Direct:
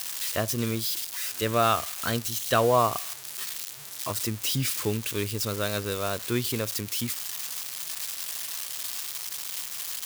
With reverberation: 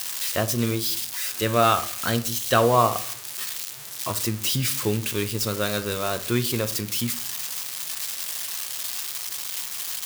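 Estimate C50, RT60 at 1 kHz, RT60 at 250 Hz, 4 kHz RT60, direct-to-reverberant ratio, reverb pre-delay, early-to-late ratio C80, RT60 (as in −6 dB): 16.0 dB, 0.50 s, 0.70 s, 0.35 s, 9.0 dB, 5 ms, 20.5 dB, 0.60 s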